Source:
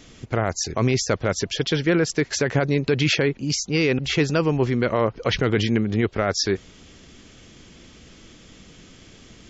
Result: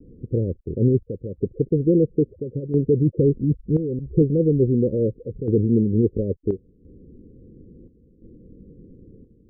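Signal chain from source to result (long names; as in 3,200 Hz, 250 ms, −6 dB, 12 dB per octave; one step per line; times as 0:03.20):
Butterworth low-pass 520 Hz 96 dB per octave
0:03.15–0:04.22: low-shelf EQ 100 Hz +11 dB
square-wave tremolo 0.73 Hz, depth 65%, duty 75%
level +3 dB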